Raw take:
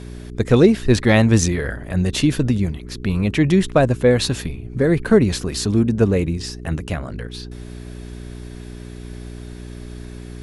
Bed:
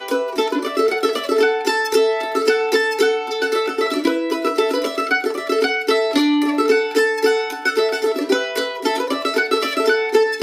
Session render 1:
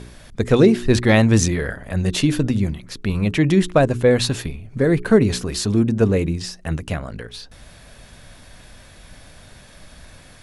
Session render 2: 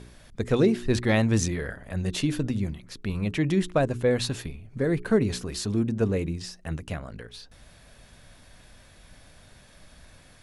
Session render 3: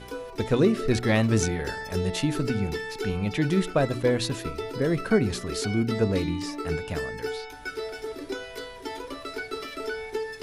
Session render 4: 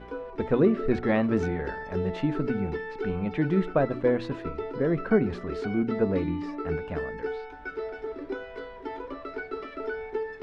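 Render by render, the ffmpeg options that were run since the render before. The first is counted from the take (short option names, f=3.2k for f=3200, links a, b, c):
-af "bandreject=f=60:t=h:w=4,bandreject=f=120:t=h:w=4,bandreject=f=180:t=h:w=4,bandreject=f=240:t=h:w=4,bandreject=f=300:t=h:w=4,bandreject=f=360:t=h:w=4,bandreject=f=420:t=h:w=4"
-af "volume=-8dB"
-filter_complex "[1:a]volume=-16dB[a];[0:a][a]amix=inputs=2:normalize=0"
-af "lowpass=1.7k,equalizer=f=110:t=o:w=0.38:g=-12"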